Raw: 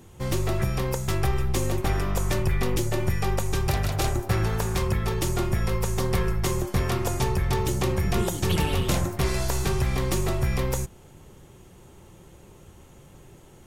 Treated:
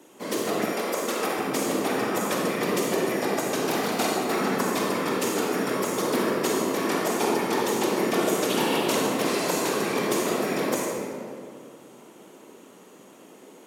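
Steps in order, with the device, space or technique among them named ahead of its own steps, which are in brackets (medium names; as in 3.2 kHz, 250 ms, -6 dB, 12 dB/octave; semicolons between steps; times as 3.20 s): whispering ghost (whisper effect; high-pass 250 Hz 24 dB/octave; reverberation RT60 2.4 s, pre-delay 35 ms, DRR -2.5 dB); 0.72–1.39 s: peaking EQ 130 Hz -14.5 dB 1.1 oct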